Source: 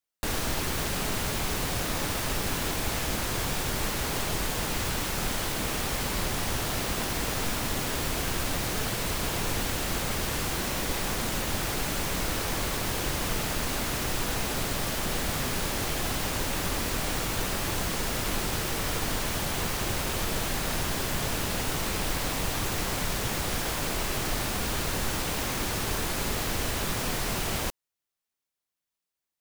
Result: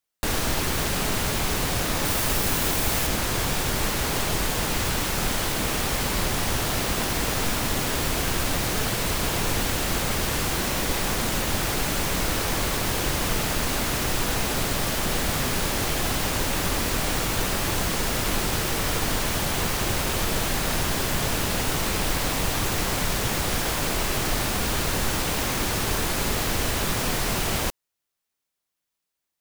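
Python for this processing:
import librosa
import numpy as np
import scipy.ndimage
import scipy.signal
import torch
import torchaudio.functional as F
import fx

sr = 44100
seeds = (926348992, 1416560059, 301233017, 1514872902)

y = fx.high_shelf(x, sr, hz=9600.0, db=6.5, at=(2.05, 3.07))
y = y * librosa.db_to_amplitude(4.5)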